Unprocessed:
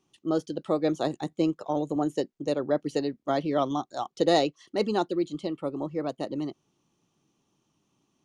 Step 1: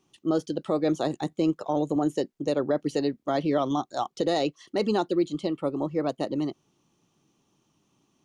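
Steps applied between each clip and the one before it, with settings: limiter -18.5 dBFS, peak gain reduction 9 dB; gain +3.5 dB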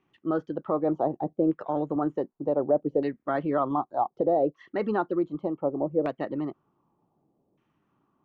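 LFO low-pass saw down 0.66 Hz 540–2100 Hz; gain -3 dB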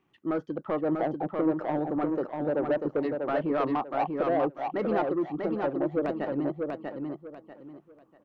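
soft clip -21 dBFS, distortion -14 dB; feedback echo 0.642 s, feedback 27%, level -4 dB

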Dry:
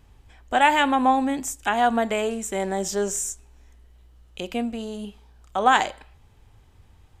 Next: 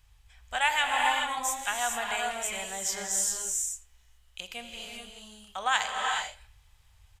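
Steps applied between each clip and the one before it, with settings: passive tone stack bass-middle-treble 10-0-10; echo 82 ms -22 dB; non-linear reverb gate 0.46 s rising, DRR 1 dB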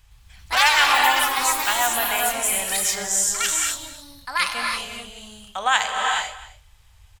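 echoes that change speed 0.113 s, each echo +5 st, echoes 3; echo 0.259 s -18.5 dB; gain +7 dB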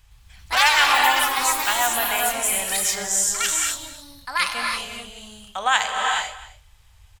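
nothing audible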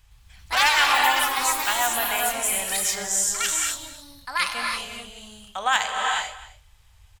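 overloaded stage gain 6.5 dB; gain -2 dB

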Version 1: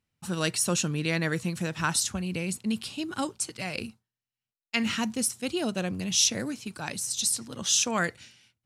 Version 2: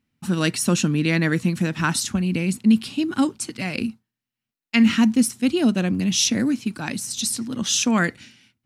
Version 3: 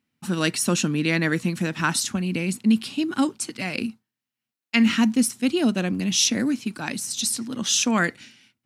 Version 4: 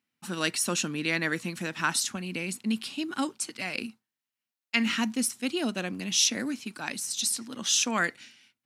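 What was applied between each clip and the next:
graphic EQ 250/500/2000/8000 Hz +12/-3/+3/-3 dB; gain +3.5 dB
HPF 210 Hz 6 dB/oct
low shelf 310 Hz -11 dB; gain -3 dB

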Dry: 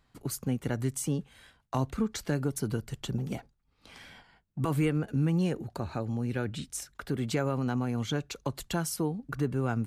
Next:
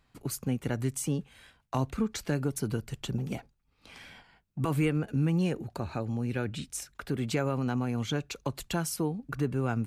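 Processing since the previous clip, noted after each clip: bell 2500 Hz +4.5 dB 0.26 oct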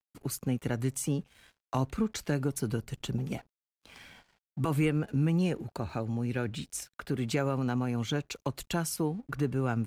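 crossover distortion -60 dBFS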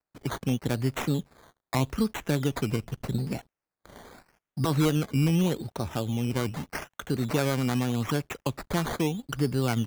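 decimation with a swept rate 13×, swing 60% 0.82 Hz; gain +3.5 dB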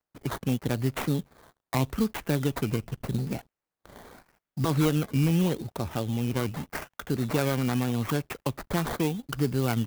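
clock jitter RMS 0.033 ms

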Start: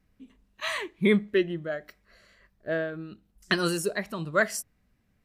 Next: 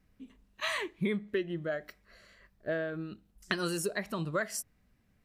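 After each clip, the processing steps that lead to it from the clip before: compressor 5:1, threshold -29 dBFS, peak gain reduction 11.5 dB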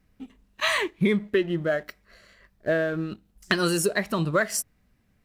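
sample leveller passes 1; gain +5.5 dB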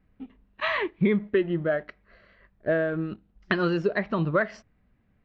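Gaussian blur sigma 2.8 samples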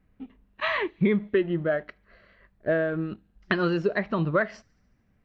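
thin delay 73 ms, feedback 70%, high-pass 5100 Hz, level -22 dB

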